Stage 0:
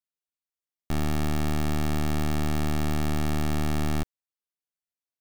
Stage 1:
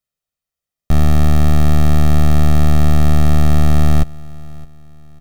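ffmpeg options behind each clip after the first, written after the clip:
ffmpeg -i in.wav -af "lowshelf=frequency=380:gain=8.5,aecho=1:1:1.6:0.5,aecho=1:1:615|1230|1845:0.0841|0.0311|0.0115,volume=6dB" out.wav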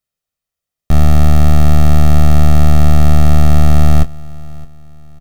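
ffmpeg -i in.wav -filter_complex "[0:a]asplit=2[link_01][link_02];[link_02]adelay=25,volume=-12dB[link_03];[link_01][link_03]amix=inputs=2:normalize=0,volume=2dB" out.wav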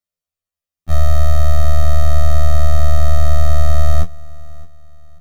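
ffmpeg -i in.wav -af "afftfilt=real='re*2*eq(mod(b,4),0)':imag='im*2*eq(mod(b,4),0)':win_size=2048:overlap=0.75,volume=-4dB" out.wav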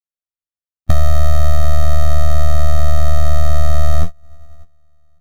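ffmpeg -i in.wav -af "acompressor=threshold=-14dB:ratio=16,agate=range=-31dB:threshold=-21dB:ratio=16:detection=peak,alimiter=level_in=18.5dB:limit=-1dB:release=50:level=0:latency=1,volume=-1dB" out.wav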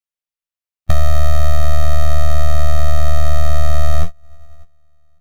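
ffmpeg -i in.wav -af "equalizer=frequency=100:width_type=o:width=0.67:gain=-3,equalizer=frequency=250:width_type=o:width=0.67:gain=-8,equalizer=frequency=2500:width_type=o:width=0.67:gain=4" out.wav

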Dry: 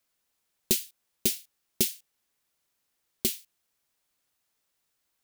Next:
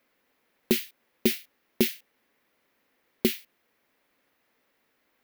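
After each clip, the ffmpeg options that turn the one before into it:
ffmpeg -i in.wav -af "equalizer=frequency=250:width_type=o:width=1:gain=12,equalizer=frequency=500:width_type=o:width=1:gain=10,equalizer=frequency=1000:width_type=o:width=1:gain=4,equalizer=frequency=2000:width_type=o:width=1:gain=10,equalizer=frequency=8000:width_type=o:width=1:gain=-10,alimiter=level_in=11dB:limit=-1dB:release=50:level=0:latency=1,volume=-7.5dB" out.wav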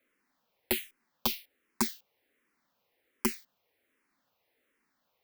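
ffmpeg -i in.wav -filter_complex "[0:a]aeval=exprs='(mod(3.98*val(0)+1,2)-1)/3.98':channel_layout=same,asplit=2[link_01][link_02];[link_02]afreqshift=-1.3[link_03];[link_01][link_03]amix=inputs=2:normalize=1,volume=-2.5dB" out.wav

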